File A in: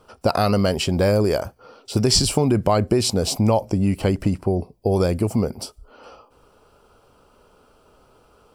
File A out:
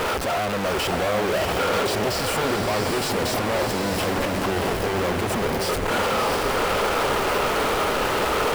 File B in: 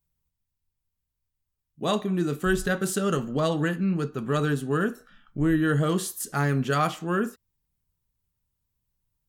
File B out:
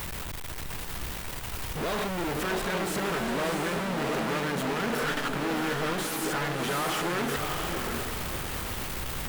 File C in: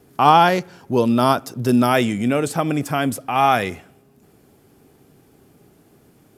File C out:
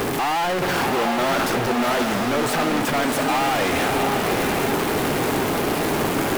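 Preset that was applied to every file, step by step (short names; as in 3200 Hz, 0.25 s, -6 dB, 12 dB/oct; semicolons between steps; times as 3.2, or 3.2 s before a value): infinite clipping; tone controls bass -8 dB, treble -9 dB; diffused feedback echo 0.684 s, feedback 42%, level -3.5 dB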